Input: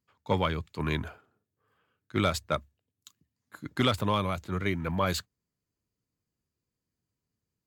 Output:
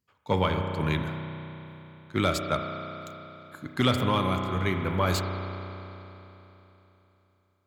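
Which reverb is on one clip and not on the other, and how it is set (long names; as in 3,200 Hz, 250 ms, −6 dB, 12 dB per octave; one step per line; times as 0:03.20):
spring reverb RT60 3.4 s, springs 32 ms, chirp 65 ms, DRR 4 dB
level +1 dB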